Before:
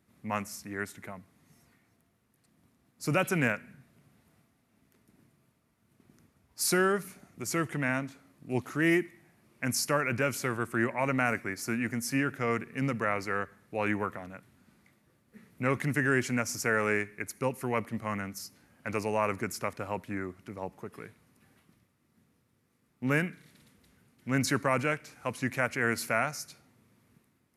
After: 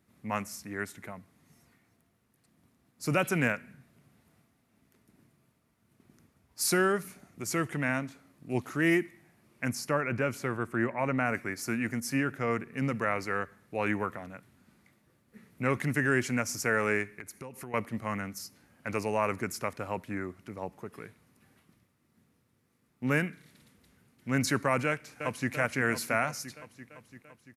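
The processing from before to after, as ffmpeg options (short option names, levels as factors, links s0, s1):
-filter_complex "[0:a]asettb=1/sr,asplit=3[s0][s1][s2];[s0]atrim=end=9.694[s3];[s1]atrim=start=9.69:end=11.34,asetpts=PTS-STARTPTS,afade=t=in:d=0.004:c=qsin,afade=t=out:st=1.646:d=0.004:c=qsin,highshelf=f=2900:g=-9.5[s4];[s2]atrim=start=11.336[s5];[s3][s4]acrossfade=d=0.004:c1=hsin:c2=qsin[s6];[s6][s5]acrossfade=d=0.004:c1=qsin:c2=hsin,asettb=1/sr,asplit=3[s7][s8][s9];[s7]atrim=end=12.004[s10];[s8]atrim=start=12:end=12.91,asetpts=PTS-STARTPTS,afade=t=in:d=0.004:c=qsin,afade=t=out:st=0.906:d=0.004:c=qsin,adynamicequalizer=threshold=0.00708:dfrequency=1800:dqfactor=0.7:tfrequency=1800:tqfactor=0.7:attack=5:release=100:ratio=0.375:range=2.5:mode=cutabove:tftype=highshelf[s11];[s9]atrim=start=12.906[s12];[s10][s11]acrossfade=d=0.004:c1=hsin:c2=qsin[s13];[s13][s12]acrossfade=d=0.004:c1=qsin:c2=hsin,asettb=1/sr,asplit=3[s14][s15][s16];[s14]atrim=end=17.194[s17];[s15]atrim=start=17.19:end=17.74,asetpts=PTS-STARTPTS,afade=t=in:d=0.004:c=qsin,afade=t=out:st=0.546:d=0.004:c=qsin,acompressor=threshold=0.0112:ratio=6:attack=3.2:release=140:knee=1:detection=peak[s18];[s16]atrim=start=17.736[s19];[s17][s18]acrossfade=d=0.004:c1=hsin:c2=qsin[s20];[s20][s19]acrossfade=d=0.004:c1=qsin:c2=hsin,asplit=2[s21][s22];[s22]afade=t=in:st=24.86:d=0.01,afade=t=out:st=25.52:d=0.01,aecho=0:1:340|680|1020|1360|1700|2040|2380|2720|3060|3400|3740:0.398107|0.278675|0.195073|0.136551|0.0955855|0.0669099|0.0468369|0.0327858|0.0229501|0.0160651|0.0112455[s23];[s21][s23]amix=inputs=2:normalize=0"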